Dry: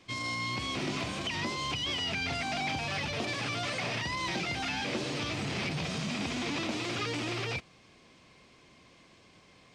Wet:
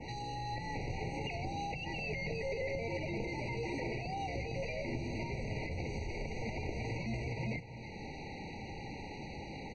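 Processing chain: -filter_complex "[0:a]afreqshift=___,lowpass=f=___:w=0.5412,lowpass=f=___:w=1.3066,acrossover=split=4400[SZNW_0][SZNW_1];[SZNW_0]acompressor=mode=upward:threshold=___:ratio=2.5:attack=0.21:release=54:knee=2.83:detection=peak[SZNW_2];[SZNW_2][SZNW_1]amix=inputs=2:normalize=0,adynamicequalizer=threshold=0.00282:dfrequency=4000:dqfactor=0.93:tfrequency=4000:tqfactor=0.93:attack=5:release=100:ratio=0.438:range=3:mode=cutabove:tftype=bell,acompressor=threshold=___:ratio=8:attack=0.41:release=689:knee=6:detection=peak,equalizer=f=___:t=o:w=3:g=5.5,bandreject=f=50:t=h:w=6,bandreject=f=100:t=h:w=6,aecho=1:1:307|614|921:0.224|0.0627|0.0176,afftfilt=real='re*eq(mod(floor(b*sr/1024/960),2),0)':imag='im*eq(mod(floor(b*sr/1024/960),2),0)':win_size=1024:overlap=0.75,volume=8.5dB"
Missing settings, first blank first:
-240, 6400, 6400, -45dB, -42dB, 310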